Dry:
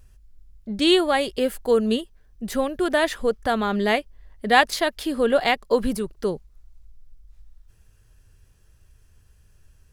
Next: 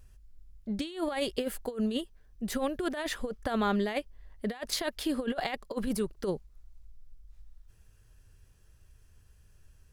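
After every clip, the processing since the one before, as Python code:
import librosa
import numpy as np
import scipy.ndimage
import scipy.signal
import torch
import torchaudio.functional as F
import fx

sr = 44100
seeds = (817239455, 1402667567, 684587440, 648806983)

y = fx.over_compress(x, sr, threshold_db=-23.0, ratio=-0.5)
y = y * 10.0 ** (-7.0 / 20.0)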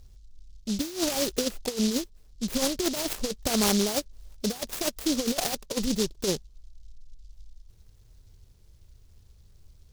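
y = scipy.signal.sosfilt(scipy.signal.butter(2, 3000.0, 'lowpass', fs=sr, output='sos'), x)
y = fx.noise_mod_delay(y, sr, seeds[0], noise_hz=4800.0, depth_ms=0.21)
y = y * 10.0 ** (4.5 / 20.0)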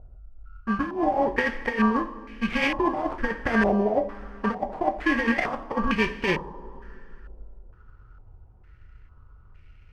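y = fx.bit_reversed(x, sr, seeds[1], block=32)
y = fx.rev_double_slope(y, sr, seeds[2], early_s=0.41, late_s=2.9, knee_db=-16, drr_db=5.0)
y = fx.filter_held_lowpass(y, sr, hz=2.2, low_hz=670.0, high_hz=2300.0)
y = y * 10.0 ** (2.5 / 20.0)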